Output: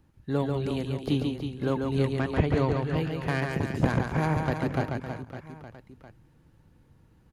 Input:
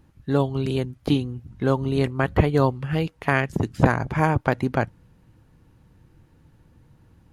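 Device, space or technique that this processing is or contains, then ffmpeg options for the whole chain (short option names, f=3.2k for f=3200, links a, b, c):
one-band saturation: -filter_complex "[0:a]acrossover=split=450|2800[a][b][c];[b]asoftclip=type=tanh:threshold=-18.5dB[d];[a][d][c]amix=inputs=3:normalize=0,asettb=1/sr,asplit=3[e][f][g];[e]atrim=end=2.104[h];[f]atrim=start=2.1:end=2.97,asetpts=PTS-STARTPTS,afade=t=in:d=0.004:c=qsin,afade=t=out:st=0.866:d=0.004:c=qsin,lowpass=f=8.2k:w=0.5412,lowpass=f=8.2k:w=1.3066[i];[g]atrim=start=2.966[j];[h][i]acrossfade=d=0.004:c1=hsin:c2=qsin[k];[k][j]acrossfade=d=0.004:c1=qsin:c2=hsin,aecho=1:1:140|322|558.6|866.2|1266:0.631|0.398|0.251|0.158|0.1,volume=-6dB"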